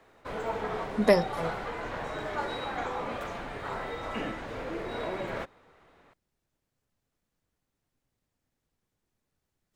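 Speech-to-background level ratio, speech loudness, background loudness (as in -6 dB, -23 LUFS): 9.5 dB, -26.0 LUFS, -35.5 LUFS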